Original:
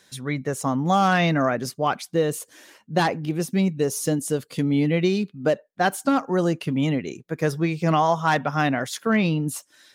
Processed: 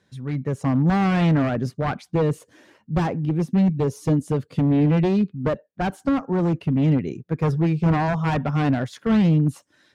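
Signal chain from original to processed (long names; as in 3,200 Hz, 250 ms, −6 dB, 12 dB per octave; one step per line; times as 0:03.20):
wavefolder on the positive side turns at −18.5 dBFS
high-pass filter 64 Hz
RIAA equalisation playback
automatic gain control gain up to 7 dB
level −7.5 dB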